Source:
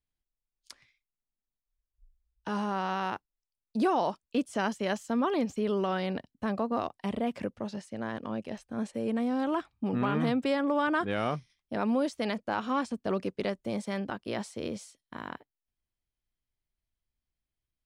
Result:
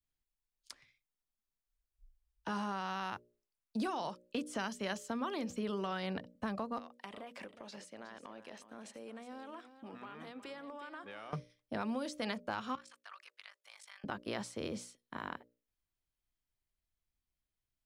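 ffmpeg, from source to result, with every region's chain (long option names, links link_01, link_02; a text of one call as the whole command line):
ffmpeg -i in.wav -filter_complex "[0:a]asettb=1/sr,asplit=3[link_01][link_02][link_03];[link_01]atrim=end=6.784[link_04];[link_02]atrim=start=6.78:end=11.33,asetpts=PTS-STARTPTS,afade=type=in:duration=0.004:curve=qsin,afade=type=out:start_time=4.546:duration=0.004:curve=qsin,highpass=frequency=790:poles=1,acompressor=threshold=-41dB:ratio=12:attack=3.2:release=140:knee=1:detection=peak,aecho=1:1:364:0.251,atrim=end_sample=200655[link_05];[link_03]atrim=start=11.326[link_06];[link_04][link_05]acrossfade=duration=0.004:curve1=hsin:curve2=qsin[link_07];[link_07][link_06]acrossfade=duration=0.004:curve1=qsin:curve2=hsin,asettb=1/sr,asplit=3[link_08][link_09][link_10];[link_08]atrim=end=12.754[link_11];[link_09]atrim=start=12.75:end=14.04,asetpts=PTS-STARTPTS,afade=type=in:duration=0.004:curve=qsin,afade=type=out:start_time=1.286:duration=0.004:curve=qsin,highpass=frequency=1200:width=0.5412,highpass=frequency=1200:width=1.3066,acompressor=threshold=-48dB:ratio=3:attack=3.2:release=140:knee=1:detection=peak,aeval=exprs='val(0)*sin(2*PI*25*n/s)':channel_layout=same[link_12];[link_10]atrim=start=14.036[link_13];[link_11][link_12]acrossfade=duration=0.004:curve1=hsin:curve2=qsin[link_14];[link_14][link_13]acrossfade=duration=0.004:curve1=qsin:curve2=hsin,bandreject=frequency=60:width_type=h:width=6,bandreject=frequency=120:width_type=h:width=6,bandreject=frequency=180:width_type=h:width=6,bandreject=frequency=240:width_type=h:width=6,bandreject=frequency=300:width_type=h:width=6,bandreject=frequency=360:width_type=h:width=6,bandreject=frequency=420:width_type=h:width=6,bandreject=frequency=480:width_type=h:width=6,bandreject=frequency=540:width_type=h:width=6,bandreject=frequency=600:width_type=h:width=6,adynamicequalizer=threshold=0.00708:dfrequency=1300:dqfactor=0.95:tfrequency=1300:tqfactor=0.95:attack=5:release=100:ratio=0.375:range=3:mode=boostabove:tftype=bell,acrossover=split=150|3000[link_15][link_16][link_17];[link_16]acompressor=threshold=-34dB:ratio=6[link_18];[link_15][link_18][link_17]amix=inputs=3:normalize=0,volume=-2dB" out.wav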